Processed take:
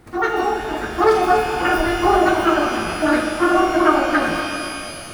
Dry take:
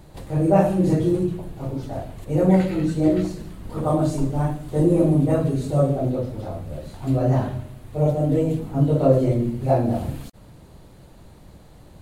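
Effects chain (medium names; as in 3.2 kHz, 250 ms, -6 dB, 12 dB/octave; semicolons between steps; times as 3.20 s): speed mistake 33 rpm record played at 78 rpm; level rider gain up to 10 dB; pitch-shifted reverb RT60 2.7 s, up +12 st, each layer -8 dB, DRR 3 dB; trim -3.5 dB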